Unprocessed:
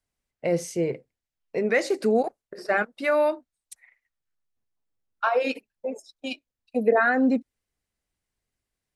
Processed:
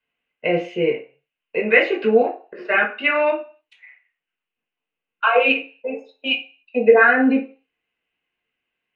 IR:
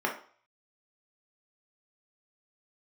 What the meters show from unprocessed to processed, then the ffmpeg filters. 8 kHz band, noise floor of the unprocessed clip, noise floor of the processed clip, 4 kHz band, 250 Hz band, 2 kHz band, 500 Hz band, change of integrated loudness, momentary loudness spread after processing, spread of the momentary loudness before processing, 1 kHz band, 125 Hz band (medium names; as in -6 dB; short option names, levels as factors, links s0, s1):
under -20 dB, under -85 dBFS, under -85 dBFS, +12.5 dB, +4.0 dB, +10.0 dB, +6.0 dB, +7.0 dB, 15 LU, 15 LU, +5.5 dB, no reading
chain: -filter_complex "[0:a]lowpass=f=2800:t=q:w=6.9[s0];[1:a]atrim=start_sample=2205,afade=t=out:st=0.42:d=0.01,atrim=end_sample=18963,asetrate=52920,aresample=44100[s1];[s0][s1]afir=irnorm=-1:irlink=0,volume=0.596"